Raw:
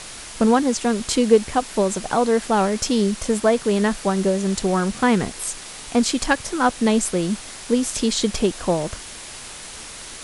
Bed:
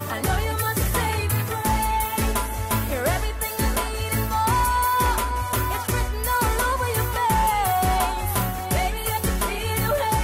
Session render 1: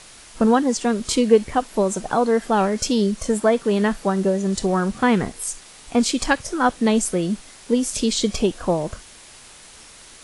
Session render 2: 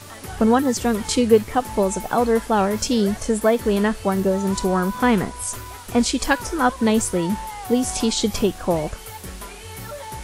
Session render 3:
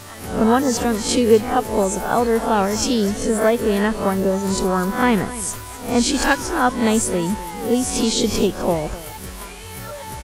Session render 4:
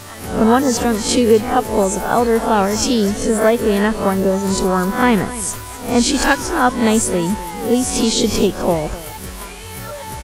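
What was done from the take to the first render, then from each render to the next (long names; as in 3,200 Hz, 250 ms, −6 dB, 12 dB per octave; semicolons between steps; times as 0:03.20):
noise reduction from a noise print 8 dB
mix in bed −12 dB
peak hold with a rise ahead of every peak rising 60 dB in 0.44 s; single-tap delay 254 ms −16 dB
level +3 dB; brickwall limiter −2 dBFS, peak gain reduction 3 dB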